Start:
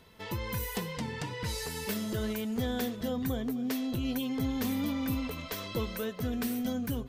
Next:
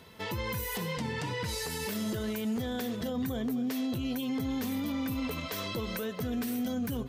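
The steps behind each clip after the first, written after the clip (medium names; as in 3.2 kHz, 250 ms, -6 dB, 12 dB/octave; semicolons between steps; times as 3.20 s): high-pass 70 Hz; peak limiter -30.5 dBFS, peak gain reduction 9.5 dB; trim +5 dB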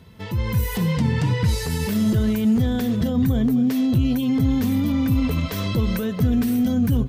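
tone controls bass +14 dB, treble -1 dB; level rider gain up to 7 dB; trim -1.5 dB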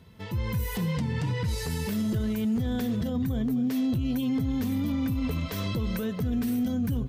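peak limiter -15.5 dBFS, peak gain reduction 5.5 dB; trim -5.5 dB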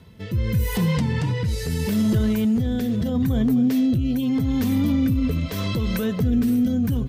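rotary cabinet horn 0.8 Hz; trim +8 dB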